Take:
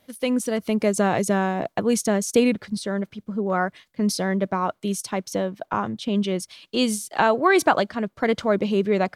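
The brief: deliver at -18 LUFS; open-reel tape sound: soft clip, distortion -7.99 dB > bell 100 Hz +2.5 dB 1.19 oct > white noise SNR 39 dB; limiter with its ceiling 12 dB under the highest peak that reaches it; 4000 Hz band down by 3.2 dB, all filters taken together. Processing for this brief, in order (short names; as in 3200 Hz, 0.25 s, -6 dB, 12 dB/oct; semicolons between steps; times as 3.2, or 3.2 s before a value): bell 4000 Hz -4.5 dB; limiter -17 dBFS; soft clip -29 dBFS; bell 100 Hz +2.5 dB 1.19 oct; white noise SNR 39 dB; gain +15 dB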